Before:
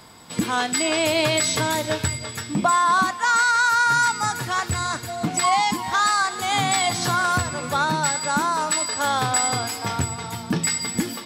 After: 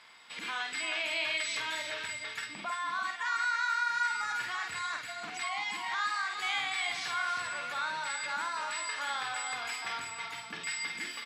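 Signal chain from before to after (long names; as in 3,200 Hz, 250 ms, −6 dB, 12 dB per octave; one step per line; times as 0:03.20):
brickwall limiter −17.5 dBFS, peak gain reduction 9.5 dB
resonant band-pass 2,300 Hz, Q 1.6
on a send: multi-tap delay 50/340 ms −4.5/−8.5 dB
on the sum: level −1.5 dB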